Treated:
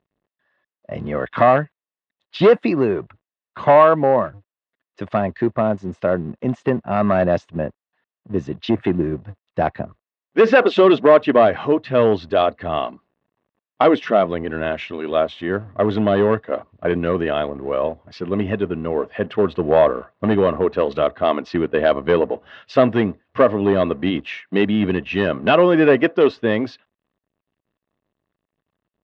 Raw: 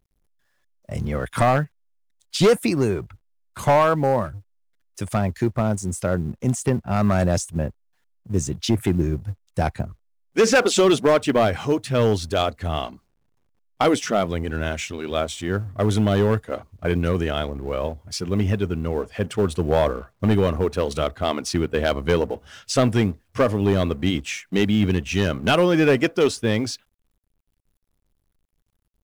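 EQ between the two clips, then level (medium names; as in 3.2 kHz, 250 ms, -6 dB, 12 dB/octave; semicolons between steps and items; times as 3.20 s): cabinet simulation 320–4400 Hz, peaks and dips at 640 Hz +5 dB, 1.1 kHz +7 dB, 1.8 kHz +8 dB, 2.6 kHz +9 dB, 3.7 kHz +5 dB; tilt EQ -4 dB/octave; band-stop 2.4 kHz, Q 11; 0.0 dB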